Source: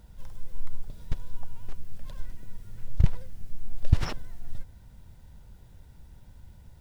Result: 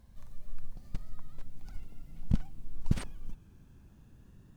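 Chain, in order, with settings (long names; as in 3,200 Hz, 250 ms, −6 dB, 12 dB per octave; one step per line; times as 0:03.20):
gliding playback speed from 110% → 188%
parametric band 210 Hz +3 dB 0.33 octaves
level −7.5 dB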